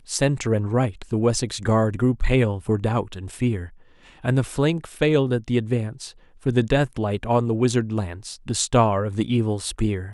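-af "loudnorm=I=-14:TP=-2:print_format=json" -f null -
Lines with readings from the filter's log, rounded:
"input_i" : "-22.8",
"input_tp" : "-5.3",
"input_lra" : "1.8",
"input_thresh" : "-33.1",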